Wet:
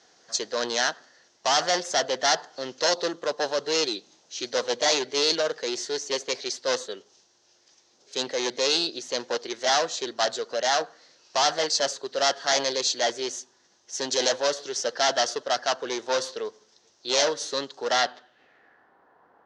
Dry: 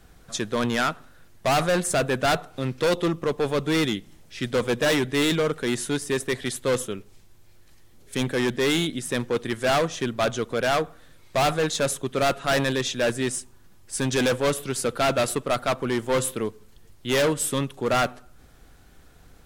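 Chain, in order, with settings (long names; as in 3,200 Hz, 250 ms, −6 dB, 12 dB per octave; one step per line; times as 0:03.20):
low-pass filter sweep 5,000 Hz → 990 Hz, 0:17.90–0:18.96
formants moved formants +3 semitones
loudspeaker in its box 480–6,600 Hz, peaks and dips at 1,200 Hz −4 dB, 2,300 Hz −9 dB, 6,200 Hz +4 dB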